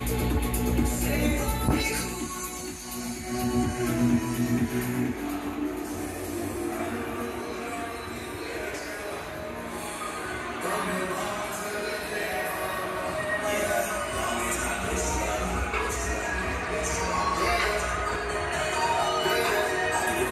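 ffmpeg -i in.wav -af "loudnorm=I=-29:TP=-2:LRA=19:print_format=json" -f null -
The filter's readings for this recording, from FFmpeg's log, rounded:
"input_i" : "-28.0",
"input_tp" : "-11.1",
"input_lra" : "6.8",
"input_thresh" : "-38.0",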